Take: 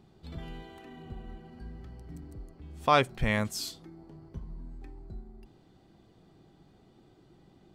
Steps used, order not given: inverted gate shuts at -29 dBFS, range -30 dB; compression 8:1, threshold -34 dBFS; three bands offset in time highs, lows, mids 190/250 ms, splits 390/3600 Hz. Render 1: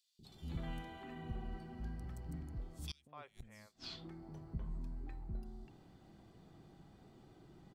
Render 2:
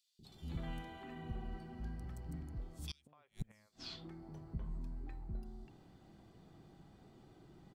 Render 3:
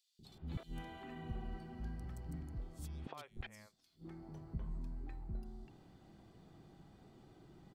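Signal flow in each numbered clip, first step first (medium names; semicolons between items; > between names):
three bands offset in time > inverted gate > compression; three bands offset in time > compression > inverted gate; inverted gate > three bands offset in time > compression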